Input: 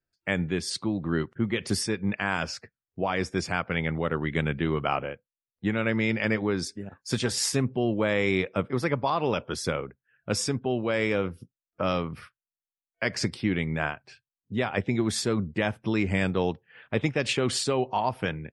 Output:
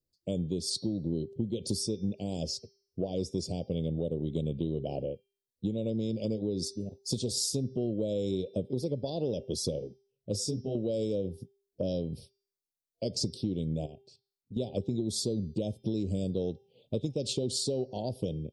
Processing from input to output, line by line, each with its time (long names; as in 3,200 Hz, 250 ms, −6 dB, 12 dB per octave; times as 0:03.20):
0:09.79–0:10.75: micro pitch shift up and down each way 33 cents
0:13.85–0:14.60: output level in coarse steps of 14 dB
whole clip: elliptic band-stop filter 560–3,900 Hz, stop band 70 dB; hum removal 396 Hz, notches 15; downward compressor 5 to 1, threshold −30 dBFS; level +2 dB